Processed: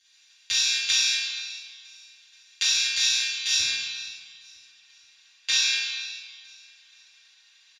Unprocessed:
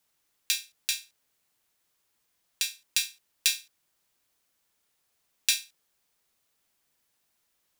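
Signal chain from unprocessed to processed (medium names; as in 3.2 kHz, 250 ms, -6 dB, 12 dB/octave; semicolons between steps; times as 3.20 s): spectral levelling over time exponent 0.4; gate -38 dBFS, range -57 dB; high-pass 1.2 kHz 6 dB/octave; treble shelf 4.3 kHz +11.5 dB, from 3.59 s +3.5 dB; compression, threshold -19 dBFS, peak gain reduction 8.5 dB; peak limiter -9 dBFS, peak gain reduction 10 dB; upward compressor, threshold -45 dBFS; tape spacing loss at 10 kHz 27 dB; feedback delay 478 ms, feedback 43%, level -21 dB; reverberation RT60 1.4 s, pre-delay 3 ms, DRR -13.5 dB; trim +4.5 dB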